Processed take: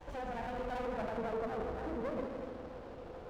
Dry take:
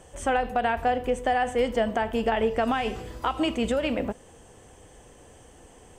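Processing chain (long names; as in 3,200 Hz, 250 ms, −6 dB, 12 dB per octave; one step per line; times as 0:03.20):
noise gate with hold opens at −42 dBFS
parametric band 970 Hz +12 dB 0.64 octaves
brickwall limiter −24.5 dBFS, peak gain reduction 16.5 dB
downward compressor 3 to 1, threshold −37 dBFS, peak gain reduction 7 dB
low-pass filter sweep 6,100 Hz → 590 Hz, 0:00.80–0:02.03
bit reduction 9 bits
tuned comb filter 170 Hz, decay 0.49 s, harmonics all, mix 60%
asymmetric clip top −45 dBFS, bottom −36.5 dBFS
phase-vocoder stretch with locked phases 0.55×
high-frequency loss of the air 260 metres
echo machine with several playback heads 80 ms, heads all three, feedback 63%, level −12 dB
windowed peak hold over 17 samples
level +7.5 dB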